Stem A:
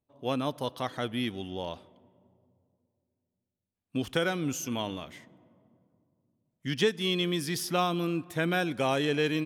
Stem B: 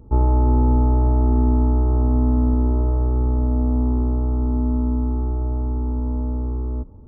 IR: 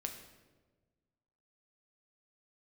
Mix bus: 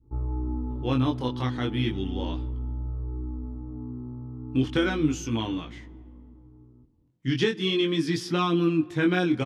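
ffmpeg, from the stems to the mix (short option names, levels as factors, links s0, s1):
-filter_complex "[0:a]lowpass=5400,acontrast=69,adelay=600,volume=0.794,asplit=2[s0][s1];[s1]volume=0.133[s2];[1:a]adynamicequalizer=threshold=0.01:dfrequency=610:dqfactor=0.74:tfrequency=610:tqfactor=0.74:attack=5:release=100:ratio=0.375:range=2:mode=cutabove:tftype=bell,volume=0.224,afade=t=out:st=4.82:d=0.5:silence=0.316228[s3];[2:a]atrim=start_sample=2205[s4];[s2][s4]afir=irnorm=-1:irlink=0[s5];[s0][s3][s5]amix=inputs=3:normalize=0,equalizer=f=125:t=o:w=0.33:g=8,equalizer=f=315:t=o:w=0.33:g=10,equalizer=f=630:t=o:w=0.33:g=-11,flanger=delay=17.5:depth=6.6:speed=0.36"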